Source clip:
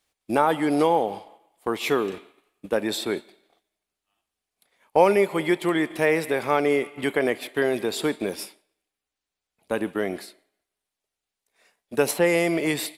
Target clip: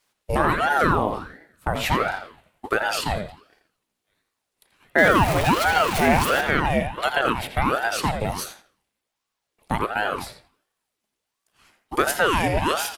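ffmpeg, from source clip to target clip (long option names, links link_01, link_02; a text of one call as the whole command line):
ffmpeg -i in.wav -filter_complex "[0:a]asettb=1/sr,asplit=3[link_01][link_02][link_03];[link_01]atrim=end=4.984[link_04];[link_02]atrim=start=4.98:end=6.41,asetpts=PTS-STARTPTS,afade=type=in:duration=0.004:curve=qsin,afade=type=out:start_time=1.426:duration=0.004:curve=qsin,aeval=exprs='val(0)+0.5*0.0708*sgn(val(0))':channel_layout=same[link_05];[link_03]atrim=start=6.406[link_06];[link_04][link_05]acrossfade=duration=0.004:curve1=hsin:curve2=qsin[link_07];[link_07][link_06]acrossfade=duration=0.004:curve1=qsin:curve2=hsin,asplit=2[link_08][link_09];[link_09]acompressor=threshold=-28dB:ratio=6,volume=2dB[link_10];[link_08][link_10]amix=inputs=2:normalize=0,asplit=2[link_11][link_12];[link_12]adelay=84,lowpass=frequency=3200:poles=1,volume=-6dB,asplit=2[link_13][link_14];[link_14]adelay=84,lowpass=frequency=3200:poles=1,volume=0.26,asplit=2[link_15][link_16];[link_16]adelay=84,lowpass=frequency=3200:poles=1,volume=0.26[link_17];[link_11][link_13][link_15][link_17]amix=inputs=4:normalize=0,aeval=exprs='val(0)*sin(2*PI*680*n/s+680*0.7/1.4*sin(2*PI*1.4*n/s))':channel_layout=same" out.wav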